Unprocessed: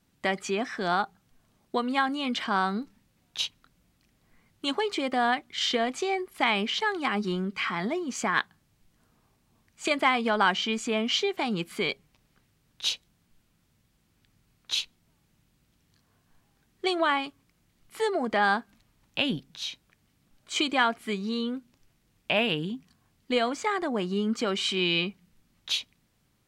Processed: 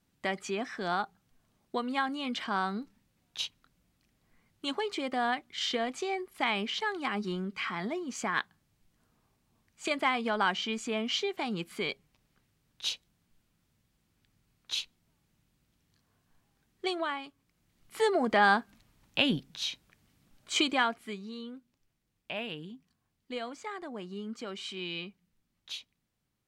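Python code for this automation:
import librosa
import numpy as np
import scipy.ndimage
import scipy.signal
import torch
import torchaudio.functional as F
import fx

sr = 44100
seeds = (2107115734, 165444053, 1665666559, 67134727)

y = fx.gain(x, sr, db=fx.line((16.89, -5.0), (17.18, -11.0), (18.01, 0.5), (20.55, 0.5), (21.32, -12.0)))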